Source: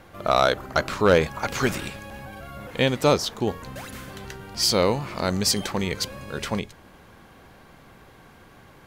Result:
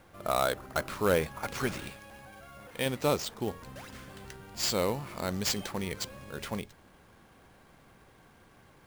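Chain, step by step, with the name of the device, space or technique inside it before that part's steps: 1.94–2.86 low shelf 390 Hz -6 dB; early companding sampler (sample-rate reducer 12000 Hz, jitter 0%; companded quantiser 6-bit); gain -8.5 dB

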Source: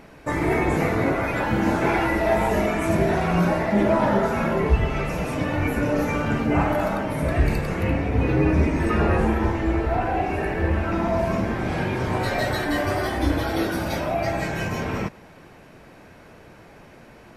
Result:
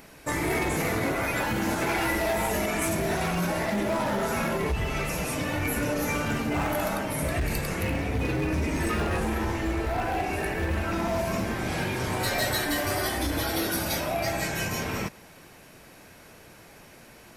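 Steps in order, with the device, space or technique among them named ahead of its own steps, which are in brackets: limiter into clipper (limiter -13.5 dBFS, peak gain reduction 7 dB; hard clip -17 dBFS, distortion -21 dB); pre-emphasis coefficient 0.8; gain +9 dB

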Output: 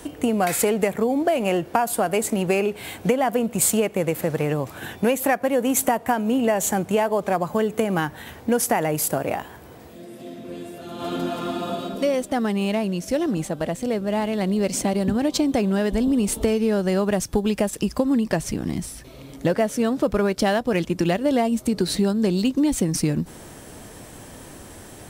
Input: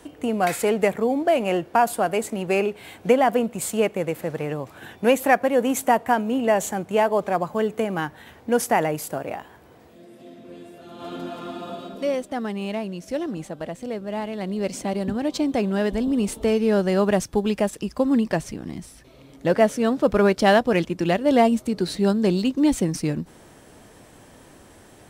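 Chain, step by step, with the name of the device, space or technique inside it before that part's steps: ASMR close-microphone chain (low shelf 190 Hz +4 dB; compressor, threshold -23 dBFS, peak gain reduction 11.5 dB; high shelf 6500 Hz +7.5 dB); gain +5.5 dB

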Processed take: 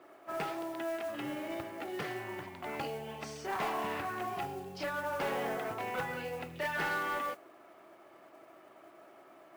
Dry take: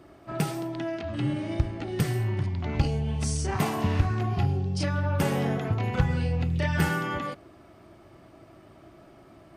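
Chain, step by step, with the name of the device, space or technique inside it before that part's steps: carbon microphone (BPF 490–2700 Hz; soft clip -27.5 dBFS, distortion -16 dB; modulation noise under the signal 20 dB)

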